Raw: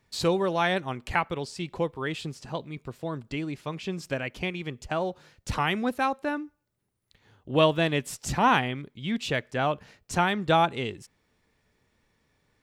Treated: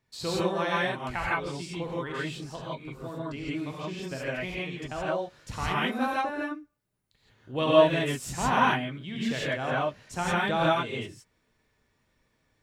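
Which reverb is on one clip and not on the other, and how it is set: gated-style reverb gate 190 ms rising, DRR -7 dB; trim -8.5 dB

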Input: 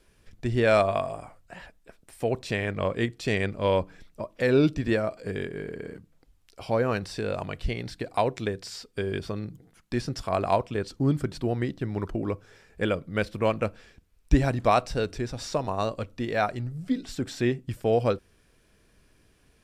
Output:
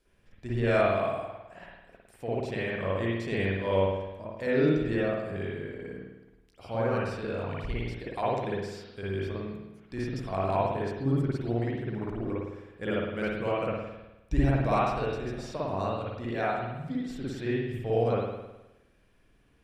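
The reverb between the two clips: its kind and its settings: spring tank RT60 1 s, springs 52 ms, chirp 80 ms, DRR -7.5 dB; trim -11 dB

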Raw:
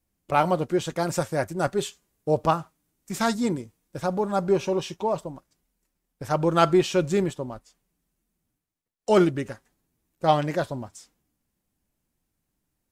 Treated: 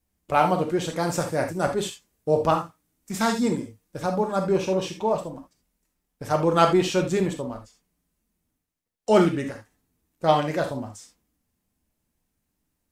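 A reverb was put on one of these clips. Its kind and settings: gated-style reverb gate 100 ms flat, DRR 3.5 dB

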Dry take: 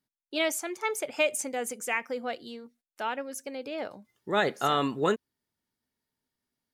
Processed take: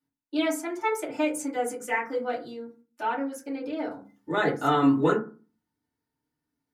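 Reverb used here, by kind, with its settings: FDN reverb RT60 0.35 s, low-frequency decay 1.45×, high-frequency decay 0.35×, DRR -9 dB; trim -8.5 dB

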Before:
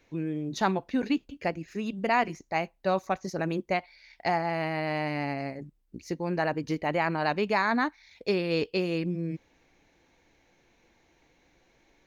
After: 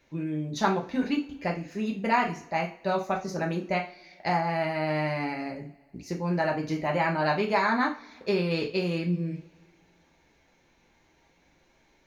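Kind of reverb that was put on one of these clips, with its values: two-slope reverb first 0.33 s, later 2 s, from -26 dB, DRR -0.5 dB; trim -2 dB

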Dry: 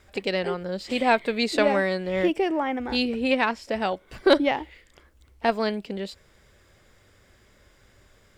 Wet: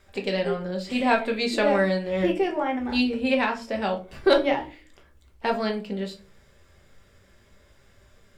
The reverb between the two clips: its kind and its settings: simulated room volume 180 m³, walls furnished, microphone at 1.2 m; trim -3 dB

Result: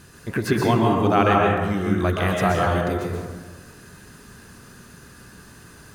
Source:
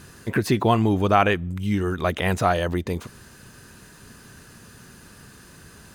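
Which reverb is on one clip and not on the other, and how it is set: plate-style reverb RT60 1.4 s, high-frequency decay 0.45×, pre-delay 110 ms, DRR -2 dB; trim -2.5 dB

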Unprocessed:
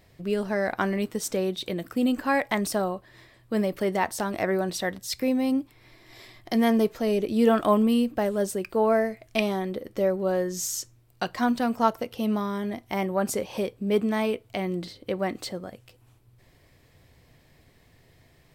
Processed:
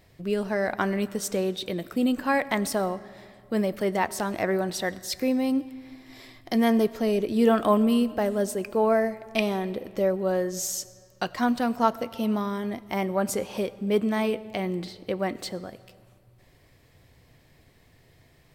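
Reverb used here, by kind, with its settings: algorithmic reverb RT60 2.2 s, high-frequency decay 0.7×, pre-delay 50 ms, DRR 18 dB

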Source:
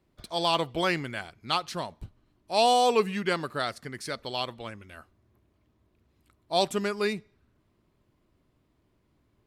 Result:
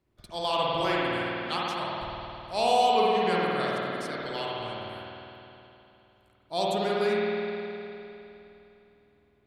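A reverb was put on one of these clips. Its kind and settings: spring tank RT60 3.1 s, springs 51 ms, chirp 65 ms, DRR -6 dB; trim -6 dB

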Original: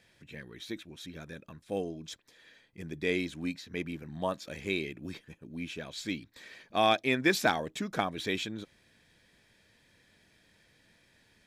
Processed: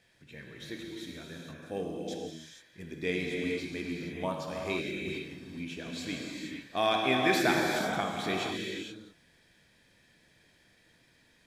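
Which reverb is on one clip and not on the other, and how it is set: gated-style reverb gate 500 ms flat, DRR -1.5 dB; trim -3 dB

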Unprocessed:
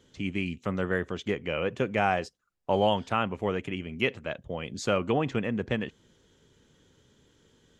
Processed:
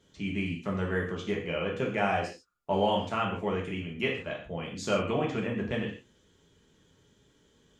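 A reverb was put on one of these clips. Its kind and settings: gated-style reverb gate 180 ms falling, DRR -2 dB; trim -5.5 dB

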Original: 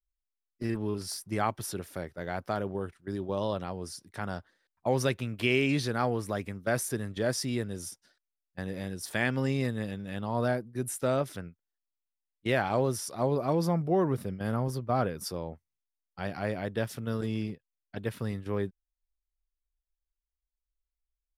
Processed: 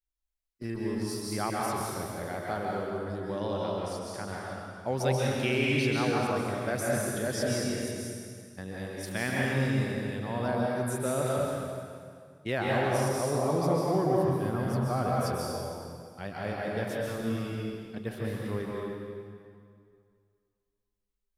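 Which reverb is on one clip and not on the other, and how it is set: plate-style reverb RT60 2.2 s, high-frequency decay 0.85×, pre-delay 120 ms, DRR -4 dB; trim -4 dB

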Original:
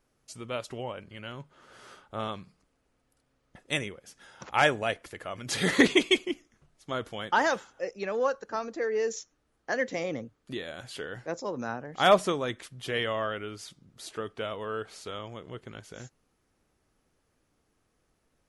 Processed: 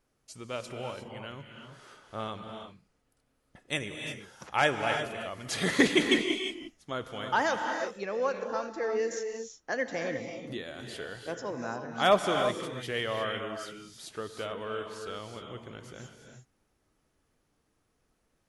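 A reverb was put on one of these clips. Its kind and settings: gated-style reverb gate 380 ms rising, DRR 4.5 dB; trim -2.5 dB

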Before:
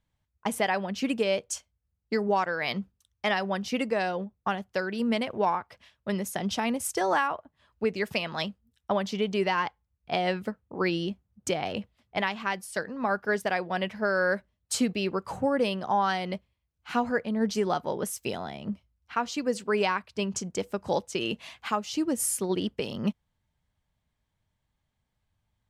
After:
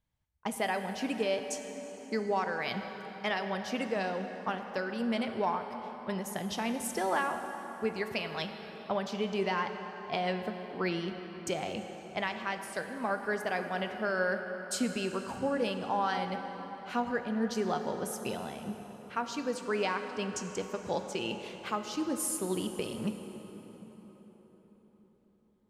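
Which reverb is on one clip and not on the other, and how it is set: plate-style reverb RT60 4.9 s, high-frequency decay 0.6×, DRR 6 dB; trim -5.5 dB

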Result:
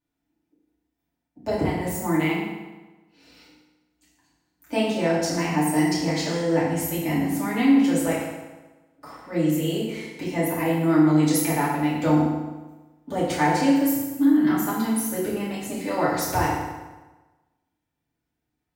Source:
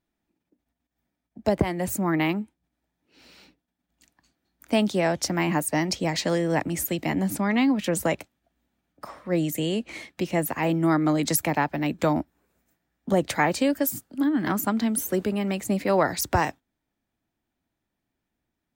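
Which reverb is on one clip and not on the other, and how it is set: FDN reverb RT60 1.2 s, low-frequency decay 1×, high-frequency decay 0.8×, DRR -8.5 dB; trim -9 dB

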